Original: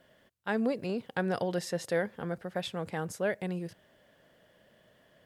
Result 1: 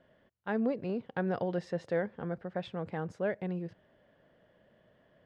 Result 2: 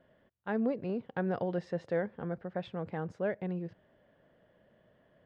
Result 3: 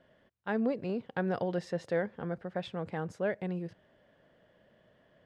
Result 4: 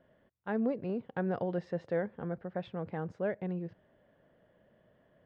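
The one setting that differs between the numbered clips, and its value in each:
head-to-tape spacing loss, at 10 kHz: 28, 37, 20, 46 decibels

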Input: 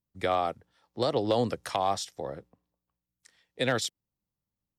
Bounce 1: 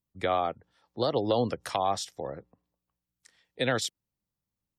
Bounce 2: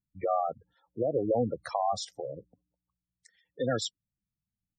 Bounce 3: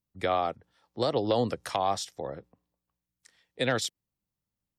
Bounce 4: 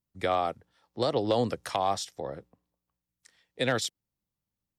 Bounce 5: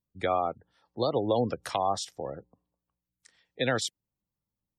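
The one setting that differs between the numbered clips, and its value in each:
gate on every frequency bin, under each frame's peak: −35, −10, −45, −60, −25 decibels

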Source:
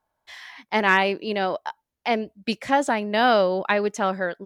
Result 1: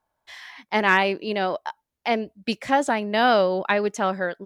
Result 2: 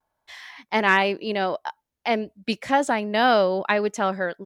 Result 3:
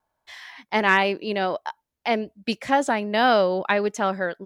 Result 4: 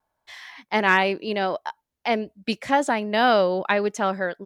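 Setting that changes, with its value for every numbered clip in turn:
pitch vibrato, speed: 6.1, 0.35, 1.3, 0.77 Hertz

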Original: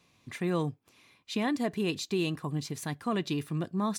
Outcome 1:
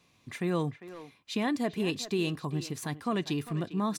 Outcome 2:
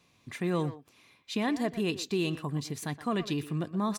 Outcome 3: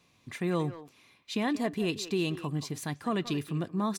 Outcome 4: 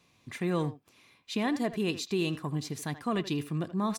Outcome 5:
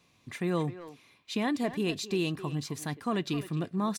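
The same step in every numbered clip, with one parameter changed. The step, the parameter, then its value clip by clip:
far-end echo of a speakerphone, delay time: 400, 120, 180, 80, 260 milliseconds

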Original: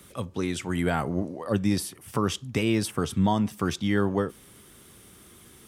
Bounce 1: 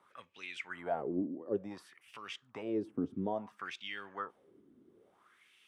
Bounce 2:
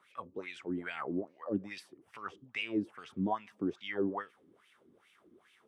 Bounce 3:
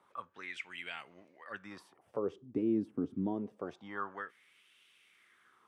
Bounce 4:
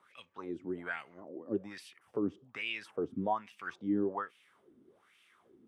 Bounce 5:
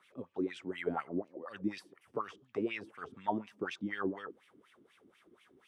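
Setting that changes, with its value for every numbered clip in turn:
LFO wah, speed: 0.58, 2.4, 0.26, 1.2, 4.1 Hertz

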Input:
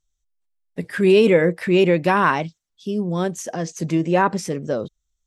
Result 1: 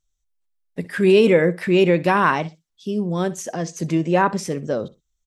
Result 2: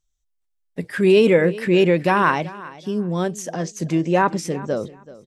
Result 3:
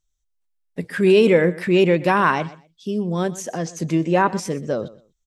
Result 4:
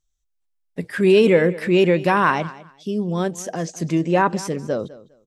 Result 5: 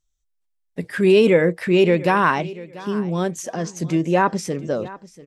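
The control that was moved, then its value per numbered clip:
repeating echo, delay time: 63, 381, 124, 203, 689 milliseconds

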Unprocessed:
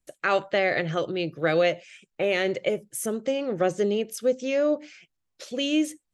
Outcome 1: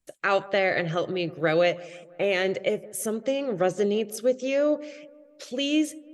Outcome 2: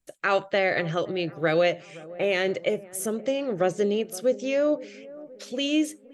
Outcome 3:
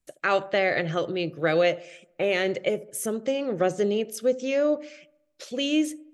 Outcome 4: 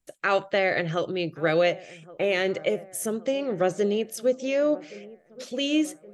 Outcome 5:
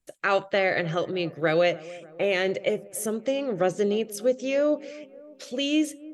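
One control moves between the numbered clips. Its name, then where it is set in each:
delay with a low-pass on its return, delay time: 165, 520, 72, 1,122, 295 milliseconds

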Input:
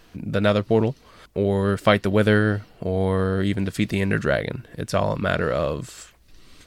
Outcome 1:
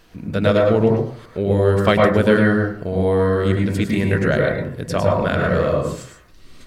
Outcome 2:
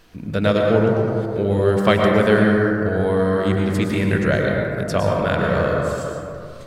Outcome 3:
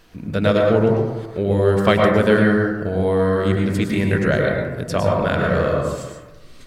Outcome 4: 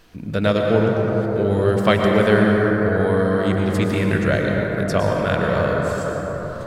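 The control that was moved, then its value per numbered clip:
dense smooth reverb, RT60: 0.53, 2.5, 1.1, 5.3 seconds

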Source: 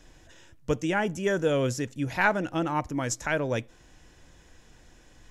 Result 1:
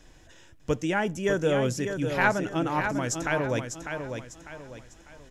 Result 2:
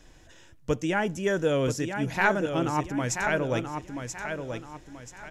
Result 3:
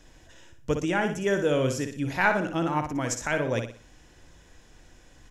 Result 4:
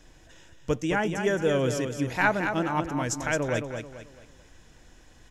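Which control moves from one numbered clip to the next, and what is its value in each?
repeating echo, delay time: 599, 982, 60, 219 milliseconds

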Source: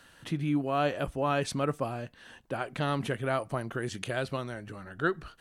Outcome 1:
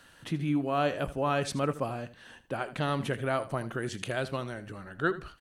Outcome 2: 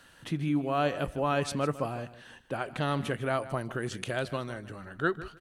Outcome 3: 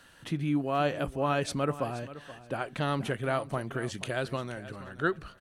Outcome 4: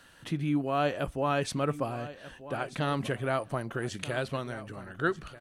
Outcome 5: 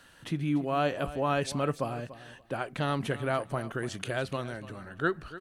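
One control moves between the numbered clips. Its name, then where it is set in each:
repeating echo, delay time: 79, 154, 478, 1,237, 290 milliseconds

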